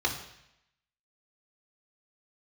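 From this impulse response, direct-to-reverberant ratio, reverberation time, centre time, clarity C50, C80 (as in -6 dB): -2.5 dB, 0.80 s, 21 ms, 8.0 dB, 10.5 dB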